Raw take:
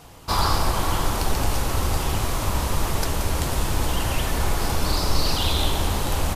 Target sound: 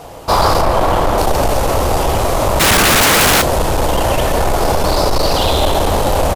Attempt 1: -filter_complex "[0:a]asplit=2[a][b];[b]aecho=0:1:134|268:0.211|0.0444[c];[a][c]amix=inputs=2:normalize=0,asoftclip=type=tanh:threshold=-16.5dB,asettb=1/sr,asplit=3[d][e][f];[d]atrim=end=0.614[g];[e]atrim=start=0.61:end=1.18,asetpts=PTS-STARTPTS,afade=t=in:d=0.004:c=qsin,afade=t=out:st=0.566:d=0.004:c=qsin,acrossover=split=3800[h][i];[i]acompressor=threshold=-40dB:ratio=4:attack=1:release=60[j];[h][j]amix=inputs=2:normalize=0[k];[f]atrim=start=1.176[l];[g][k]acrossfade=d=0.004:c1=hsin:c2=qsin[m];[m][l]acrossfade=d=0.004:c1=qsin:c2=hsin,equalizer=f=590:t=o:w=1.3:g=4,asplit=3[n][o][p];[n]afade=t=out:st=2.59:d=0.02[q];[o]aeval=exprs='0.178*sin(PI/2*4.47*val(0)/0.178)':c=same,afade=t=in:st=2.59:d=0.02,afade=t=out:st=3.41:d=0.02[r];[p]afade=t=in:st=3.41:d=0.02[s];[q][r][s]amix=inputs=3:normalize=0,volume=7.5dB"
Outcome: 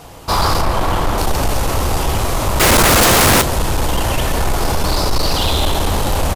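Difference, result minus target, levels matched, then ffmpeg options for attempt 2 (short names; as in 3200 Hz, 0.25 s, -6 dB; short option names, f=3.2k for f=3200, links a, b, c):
500 Hz band -3.0 dB
-filter_complex "[0:a]asplit=2[a][b];[b]aecho=0:1:134|268:0.211|0.0444[c];[a][c]amix=inputs=2:normalize=0,asoftclip=type=tanh:threshold=-16.5dB,asettb=1/sr,asplit=3[d][e][f];[d]atrim=end=0.614[g];[e]atrim=start=0.61:end=1.18,asetpts=PTS-STARTPTS,afade=t=in:d=0.004:c=qsin,afade=t=out:st=0.566:d=0.004:c=qsin,acrossover=split=3800[h][i];[i]acompressor=threshold=-40dB:ratio=4:attack=1:release=60[j];[h][j]amix=inputs=2:normalize=0[k];[f]atrim=start=1.176[l];[g][k]acrossfade=d=0.004:c1=hsin:c2=qsin[m];[m][l]acrossfade=d=0.004:c1=qsin:c2=hsin,equalizer=f=590:t=o:w=1.3:g=12.5,asplit=3[n][o][p];[n]afade=t=out:st=2.59:d=0.02[q];[o]aeval=exprs='0.178*sin(PI/2*4.47*val(0)/0.178)':c=same,afade=t=in:st=2.59:d=0.02,afade=t=out:st=3.41:d=0.02[r];[p]afade=t=in:st=3.41:d=0.02[s];[q][r][s]amix=inputs=3:normalize=0,volume=7.5dB"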